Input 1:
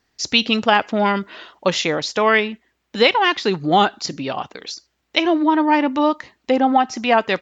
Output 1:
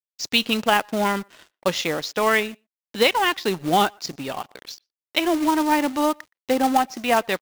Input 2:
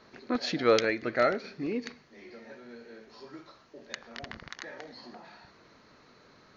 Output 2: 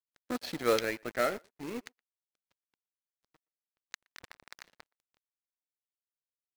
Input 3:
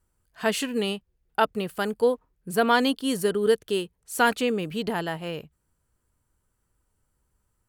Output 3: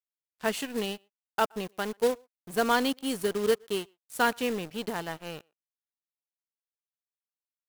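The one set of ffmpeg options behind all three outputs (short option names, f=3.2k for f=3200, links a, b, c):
-filter_complex "[0:a]aeval=exprs='sgn(val(0))*max(abs(val(0))-0.0133,0)':c=same,asplit=2[a][b];[b]adelay=120,highpass=300,lowpass=3.4k,asoftclip=type=hard:threshold=-10dB,volume=-30dB[c];[a][c]amix=inputs=2:normalize=0,acrusher=bits=3:mode=log:mix=0:aa=0.000001,volume=-3.5dB"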